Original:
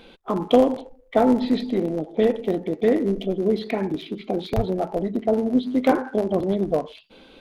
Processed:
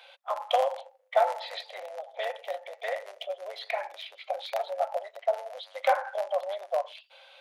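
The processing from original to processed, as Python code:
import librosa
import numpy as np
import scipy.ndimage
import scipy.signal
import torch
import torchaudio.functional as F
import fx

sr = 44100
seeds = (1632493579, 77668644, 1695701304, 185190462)

y = scipy.signal.sosfilt(scipy.signal.cheby1(6, 3, 540.0, 'highpass', fs=sr, output='sos'), x)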